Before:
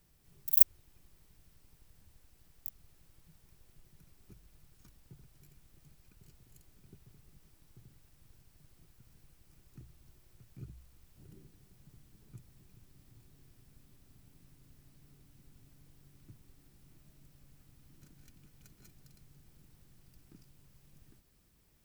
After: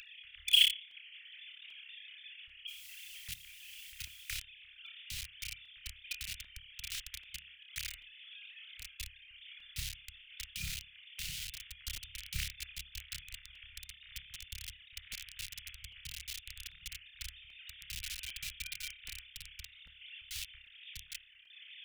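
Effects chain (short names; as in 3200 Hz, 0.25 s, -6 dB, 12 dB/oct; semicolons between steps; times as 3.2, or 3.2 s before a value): sine-wave speech; on a send: flutter echo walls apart 5 m, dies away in 0.41 s; 2.67–4.33 on the sum: added noise white -67 dBFS; in parallel at -11 dB: companded quantiser 2-bit; on the sum: upward compressor, threshold -49 dBFS; inverse Chebyshev band-stop 240–810 Hz, stop band 70 dB; crackling interface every 0.79 s, samples 128, repeat, from 0.91; gain +10 dB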